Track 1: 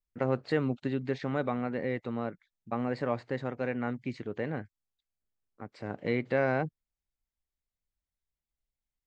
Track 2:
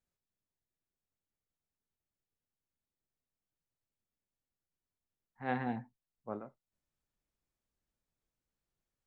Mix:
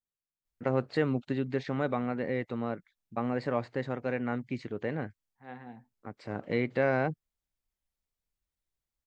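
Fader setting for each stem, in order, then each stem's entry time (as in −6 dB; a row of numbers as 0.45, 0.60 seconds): +0.5, −10.5 decibels; 0.45, 0.00 seconds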